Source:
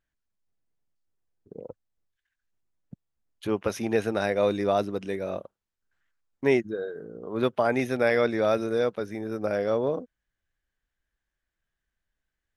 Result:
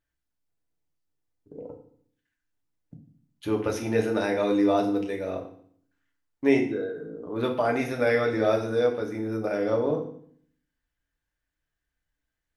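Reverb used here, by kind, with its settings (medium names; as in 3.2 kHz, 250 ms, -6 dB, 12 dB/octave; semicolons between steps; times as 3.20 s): FDN reverb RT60 0.58 s, low-frequency decay 1.4×, high-frequency decay 0.9×, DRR 1 dB; trim -2.5 dB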